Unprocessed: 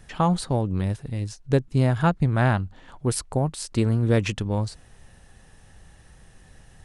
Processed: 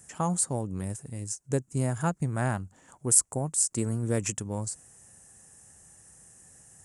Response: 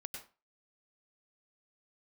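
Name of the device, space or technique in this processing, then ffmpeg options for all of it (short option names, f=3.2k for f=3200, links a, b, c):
budget condenser microphone: -af "highpass=96,highshelf=f=5.4k:t=q:w=3:g=12.5,volume=-7dB"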